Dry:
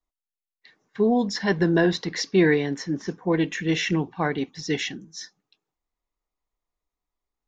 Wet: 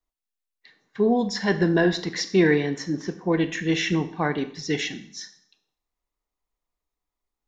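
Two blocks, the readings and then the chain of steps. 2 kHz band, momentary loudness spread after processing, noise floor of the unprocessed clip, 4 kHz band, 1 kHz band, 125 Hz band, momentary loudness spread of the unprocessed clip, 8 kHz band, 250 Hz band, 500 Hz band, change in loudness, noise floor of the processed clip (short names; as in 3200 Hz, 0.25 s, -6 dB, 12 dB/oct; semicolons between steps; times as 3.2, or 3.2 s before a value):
+0.5 dB, 13 LU, under -85 dBFS, +0.5 dB, 0.0 dB, 0.0 dB, 14 LU, n/a, 0.0 dB, 0.0 dB, 0.0 dB, under -85 dBFS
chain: Schroeder reverb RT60 0.59 s, combs from 27 ms, DRR 11 dB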